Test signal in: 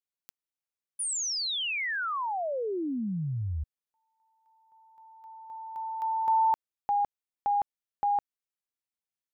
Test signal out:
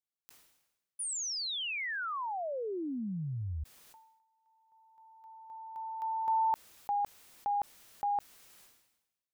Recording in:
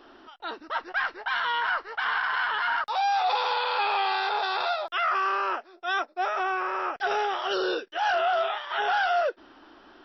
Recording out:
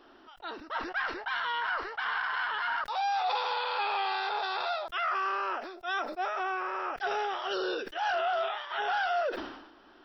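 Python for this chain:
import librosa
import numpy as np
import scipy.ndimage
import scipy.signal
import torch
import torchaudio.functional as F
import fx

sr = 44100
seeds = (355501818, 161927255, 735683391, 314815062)

y = fx.sustainer(x, sr, db_per_s=61.0)
y = F.gain(torch.from_numpy(y), -5.0).numpy()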